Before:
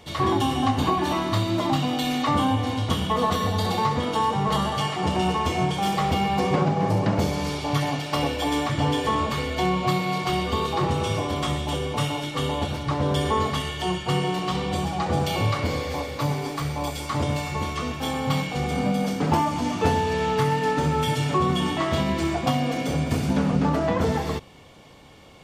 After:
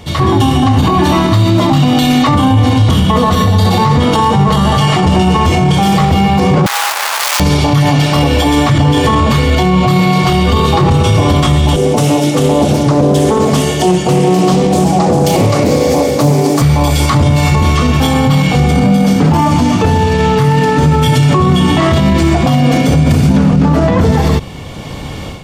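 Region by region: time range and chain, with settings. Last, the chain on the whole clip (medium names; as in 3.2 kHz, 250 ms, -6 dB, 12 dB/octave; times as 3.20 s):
6.66–7.40 s: one-bit comparator + high-pass 840 Hz 24 dB/octave
11.76–16.62 s: high-pass 230 Hz + high-order bell 2 kHz -10.5 dB 2.5 oct + loudspeaker Doppler distortion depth 0.23 ms
whole clip: tone controls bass +8 dB, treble +1 dB; level rider; loudness maximiser +12.5 dB; trim -1 dB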